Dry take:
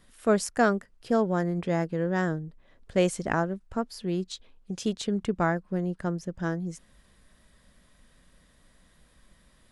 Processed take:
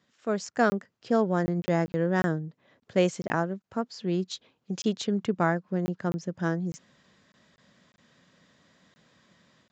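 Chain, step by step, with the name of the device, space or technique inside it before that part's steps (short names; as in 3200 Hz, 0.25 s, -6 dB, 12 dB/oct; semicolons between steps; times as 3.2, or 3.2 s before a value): call with lost packets (HPF 110 Hz 24 dB/oct; downsampling 16000 Hz; AGC gain up to 9 dB; packet loss packets of 20 ms random); gain -7 dB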